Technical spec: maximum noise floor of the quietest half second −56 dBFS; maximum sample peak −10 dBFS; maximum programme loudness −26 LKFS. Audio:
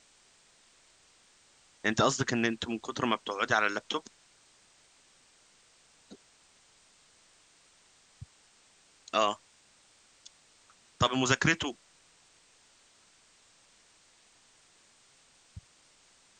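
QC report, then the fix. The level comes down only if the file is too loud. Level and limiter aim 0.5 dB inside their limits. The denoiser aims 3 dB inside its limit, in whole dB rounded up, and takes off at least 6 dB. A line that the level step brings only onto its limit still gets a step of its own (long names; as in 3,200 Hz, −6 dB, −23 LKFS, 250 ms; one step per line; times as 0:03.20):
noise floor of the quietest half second −63 dBFS: in spec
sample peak −8.5 dBFS: out of spec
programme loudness −29.5 LKFS: in spec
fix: brickwall limiter −10.5 dBFS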